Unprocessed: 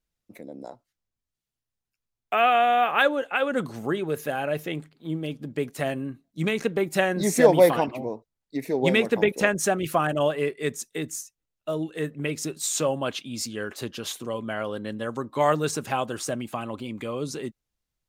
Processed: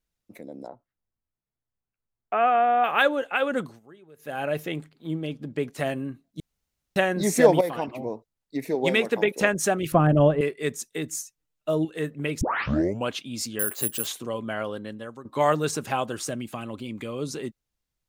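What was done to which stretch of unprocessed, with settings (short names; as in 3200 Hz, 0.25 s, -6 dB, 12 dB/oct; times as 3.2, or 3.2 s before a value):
0.67–2.84 LPF 1500 Hz
3.54–4.44 dip -23.5 dB, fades 0.26 s
5.14–5.78 high shelf 9600 Hz -10 dB
6.4–6.96 room tone
7.61–8.09 fade in, from -14 dB
8.75–9.4 HPF 260 Hz 6 dB/oct
9.92–10.41 tilt -4.5 dB/oct
11.11–11.85 comb 6.6 ms, depth 72%
12.41 tape start 0.68 s
13.59–14.07 careless resampling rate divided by 4×, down filtered, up zero stuff
14.62–15.25 fade out, to -14.5 dB
16.14–17.19 dynamic EQ 870 Hz, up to -6 dB, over -44 dBFS, Q 0.91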